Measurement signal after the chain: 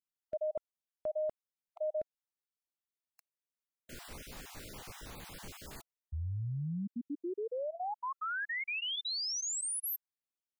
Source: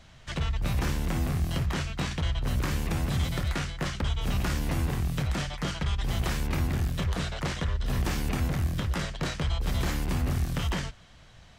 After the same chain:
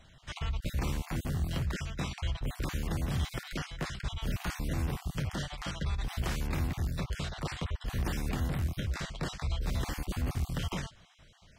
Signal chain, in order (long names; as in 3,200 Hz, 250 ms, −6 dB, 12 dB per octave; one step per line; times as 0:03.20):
time-frequency cells dropped at random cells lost 25%
level −4 dB